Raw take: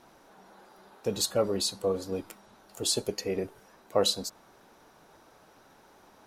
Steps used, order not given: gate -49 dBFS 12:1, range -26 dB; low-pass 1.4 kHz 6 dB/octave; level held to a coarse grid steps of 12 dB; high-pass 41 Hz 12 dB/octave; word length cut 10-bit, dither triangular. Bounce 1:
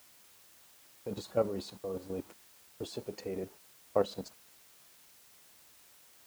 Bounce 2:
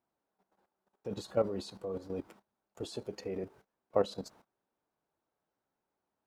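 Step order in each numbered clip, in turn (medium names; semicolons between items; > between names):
level held to a coarse grid > low-pass > gate > word length cut > high-pass; high-pass > word length cut > gate > level held to a coarse grid > low-pass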